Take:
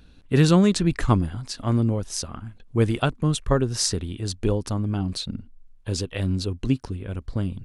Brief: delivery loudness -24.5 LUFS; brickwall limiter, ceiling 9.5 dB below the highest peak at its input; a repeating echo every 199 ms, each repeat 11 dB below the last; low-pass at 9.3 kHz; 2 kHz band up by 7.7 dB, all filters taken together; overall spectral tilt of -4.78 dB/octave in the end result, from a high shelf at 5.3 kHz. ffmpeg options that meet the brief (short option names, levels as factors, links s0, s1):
-af "lowpass=9300,equalizer=f=2000:t=o:g=9,highshelf=f=5300:g=6.5,alimiter=limit=0.237:level=0:latency=1,aecho=1:1:199|398|597:0.282|0.0789|0.0221,volume=1.12"